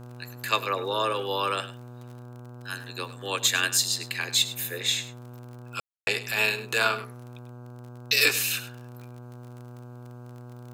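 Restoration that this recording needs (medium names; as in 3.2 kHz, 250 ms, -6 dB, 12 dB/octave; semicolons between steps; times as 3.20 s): de-click; de-hum 122.2 Hz, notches 13; room tone fill 5.80–6.07 s; inverse comb 102 ms -14.5 dB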